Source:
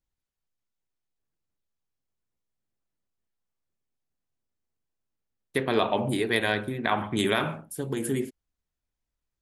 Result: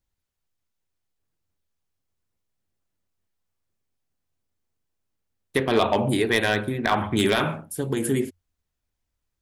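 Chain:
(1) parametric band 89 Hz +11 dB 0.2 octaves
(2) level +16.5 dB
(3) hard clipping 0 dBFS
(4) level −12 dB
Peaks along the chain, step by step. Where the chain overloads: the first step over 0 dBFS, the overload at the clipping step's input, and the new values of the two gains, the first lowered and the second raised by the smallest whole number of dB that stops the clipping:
−8.5, +8.0, 0.0, −12.0 dBFS
step 2, 8.0 dB
step 2 +8.5 dB, step 4 −4 dB

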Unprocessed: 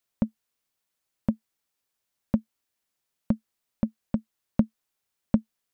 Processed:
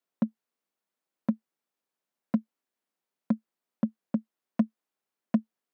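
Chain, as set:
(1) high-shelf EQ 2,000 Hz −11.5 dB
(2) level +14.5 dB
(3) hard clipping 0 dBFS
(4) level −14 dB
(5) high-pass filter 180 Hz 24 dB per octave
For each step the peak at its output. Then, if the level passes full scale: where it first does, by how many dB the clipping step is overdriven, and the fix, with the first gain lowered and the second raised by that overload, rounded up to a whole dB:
−8.5, +6.0, 0.0, −14.0, −14.0 dBFS
step 2, 6.0 dB
step 2 +8.5 dB, step 4 −8 dB

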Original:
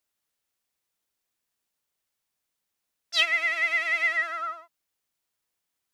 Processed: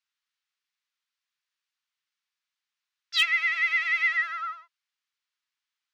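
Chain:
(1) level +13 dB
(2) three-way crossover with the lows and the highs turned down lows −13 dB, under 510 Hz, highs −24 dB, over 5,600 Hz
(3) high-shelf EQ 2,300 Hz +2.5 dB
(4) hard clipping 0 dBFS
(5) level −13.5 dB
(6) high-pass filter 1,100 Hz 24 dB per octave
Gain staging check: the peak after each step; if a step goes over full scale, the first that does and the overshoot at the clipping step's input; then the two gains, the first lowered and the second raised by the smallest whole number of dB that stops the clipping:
+4.0, +4.0, +5.5, 0.0, −13.5, −10.0 dBFS
step 1, 5.5 dB
step 1 +7 dB, step 5 −7.5 dB

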